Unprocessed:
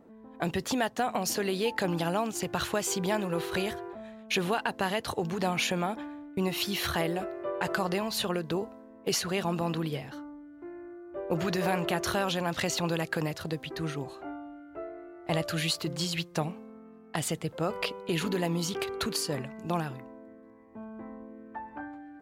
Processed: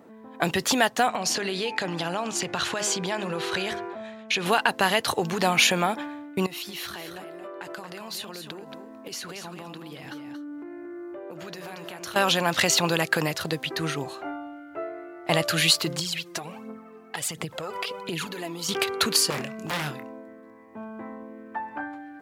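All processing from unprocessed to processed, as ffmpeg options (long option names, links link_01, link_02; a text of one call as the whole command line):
ffmpeg -i in.wav -filter_complex "[0:a]asettb=1/sr,asplit=3[link_01][link_02][link_03];[link_01]atrim=end=1.094[link_04];[link_02]atrim=start=1.09:end=4.46,asetpts=PTS-STARTPTS,afade=type=in:duration=0.004:curve=qsin,afade=type=out:start_time=3.366:duration=0.004:curve=qsin,lowpass=7200,bandreject=frequency=104.5:width_type=h:width=4,bandreject=frequency=209:width_type=h:width=4,bandreject=frequency=313.5:width_type=h:width=4,bandreject=frequency=418:width_type=h:width=4,bandreject=frequency=522.5:width_type=h:width=4,bandreject=frequency=627:width_type=h:width=4,bandreject=frequency=731.5:width_type=h:width=4,bandreject=frequency=836:width_type=h:width=4,bandreject=frequency=940.5:width_type=h:width=4,bandreject=frequency=1045:width_type=h:width=4,bandreject=frequency=1149.5:width_type=h:width=4,bandreject=frequency=1254:width_type=h:width=4,bandreject=frequency=1358.5:width_type=h:width=4,bandreject=frequency=1463:width_type=h:width=4,bandreject=frequency=1567.5:width_type=h:width=4,bandreject=frequency=1672:width_type=h:width=4,bandreject=frequency=1776.5:width_type=h:width=4,bandreject=frequency=1881:width_type=h:width=4,bandreject=frequency=1985.5:width_type=h:width=4,bandreject=frequency=2090:width_type=h:width=4,bandreject=frequency=2194.5:width_type=h:width=4,bandreject=frequency=2299:width_type=h:width=4,bandreject=frequency=2403.5:width_type=h:width=4,bandreject=frequency=2508:width_type=h:width=4,acompressor=threshold=-31dB:ratio=4:attack=3.2:release=140:knee=1:detection=peak[link_05];[link_03]atrim=start=4.456[link_06];[link_04][link_05]acrossfade=duration=0.004:curve1=hsin:curve2=qsin[link_07];[link_07][link_06]acrossfade=duration=0.004:curve1=qsin:curve2=hsin,asettb=1/sr,asplit=3[link_08][link_09][link_10];[link_08]atrim=end=6.464[link_11];[link_09]atrim=start=6.46:end=12.16,asetpts=PTS-STARTPTS,afade=type=in:duration=0.004:curve=qsin,afade=type=out:start_time=5.696:duration=0.004:curve=qsin,equalizer=frequency=300:width=4.9:gain=7.5,acompressor=threshold=-41dB:ratio=16:attack=3.2:release=140:knee=1:detection=peak,aecho=1:1:229:0.422,atrim=end_sample=251370[link_12];[link_10]atrim=start=12.156[link_13];[link_11][link_12]acrossfade=duration=0.004:curve1=hsin:curve2=qsin[link_14];[link_14][link_13]acrossfade=duration=0.004:curve1=qsin:curve2=hsin,asettb=1/sr,asplit=3[link_15][link_16][link_17];[link_15]atrim=end=15.994[link_18];[link_16]atrim=start=15.99:end=18.69,asetpts=PTS-STARTPTS,afade=type=in:duration=0.004:curve=qsin,afade=type=out:start_time=2.696:duration=0.004:curve=qsin,acompressor=threshold=-36dB:ratio=12:attack=3.2:release=140:knee=1:detection=peak,aphaser=in_gain=1:out_gain=1:delay=3.2:decay=0.54:speed=1.4:type=triangular[link_19];[link_17]atrim=start=18.686[link_20];[link_18][link_19]acrossfade=duration=0.004:curve1=hsin:curve2=qsin[link_21];[link_21][link_20]acrossfade=duration=0.004:curve1=qsin:curve2=hsin,asettb=1/sr,asplit=3[link_22][link_23][link_24];[link_22]atrim=end=19.304[link_25];[link_23]atrim=start=19.3:end=20.22,asetpts=PTS-STARTPTS,afade=type=in:duration=0.004:curve=qsin,afade=type=out:start_time=0.916:duration=0.004:curve=qsin,bandreject=frequency=880:width=15,aeval=exprs='0.0299*(abs(mod(val(0)/0.0299+3,4)-2)-1)':channel_layout=same,asplit=2[link_26][link_27];[link_27]adelay=27,volume=-9dB[link_28];[link_26][link_28]amix=inputs=2:normalize=0,atrim=end_sample=40572[link_29];[link_24]atrim=start=20.216[link_30];[link_25][link_29]acrossfade=duration=0.004:curve1=hsin:curve2=qsin[link_31];[link_31][link_30]acrossfade=duration=0.004:curve1=qsin:curve2=hsin,highpass=100,tiltshelf=frequency=760:gain=-4,volume=7dB" out.wav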